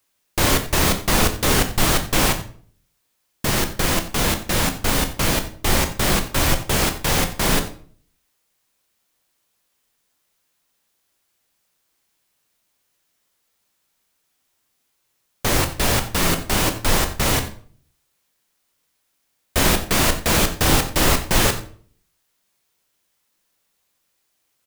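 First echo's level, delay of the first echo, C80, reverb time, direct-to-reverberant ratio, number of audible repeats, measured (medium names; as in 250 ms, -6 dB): -16.5 dB, 89 ms, 14.0 dB, 0.50 s, 6.5 dB, 1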